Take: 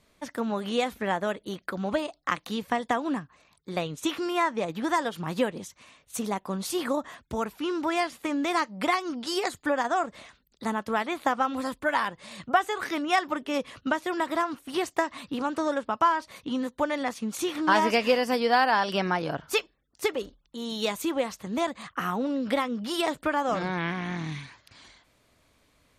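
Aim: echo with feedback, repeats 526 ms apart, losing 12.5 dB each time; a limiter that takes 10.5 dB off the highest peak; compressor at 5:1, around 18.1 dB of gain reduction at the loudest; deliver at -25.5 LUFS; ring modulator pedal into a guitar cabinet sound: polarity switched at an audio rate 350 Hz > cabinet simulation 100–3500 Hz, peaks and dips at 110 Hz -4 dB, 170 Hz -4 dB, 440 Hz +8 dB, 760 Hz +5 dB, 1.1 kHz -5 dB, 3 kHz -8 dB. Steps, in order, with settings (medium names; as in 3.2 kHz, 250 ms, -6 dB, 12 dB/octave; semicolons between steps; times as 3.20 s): compression 5:1, threshold -38 dBFS; peak limiter -31.5 dBFS; feedback delay 526 ms, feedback 24%, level -12.5 dB; polarity switched at an audio rate 350 Hz; cabinet simulation 100–3500 Hz, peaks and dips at 110 Hz -4 dB, 170 Hz -4 dB, 440 Hz +8 dB, 760 Hz +5 dB, 1.1 kHz -5 dB, 3 kHz -8 dB; trim +17 dB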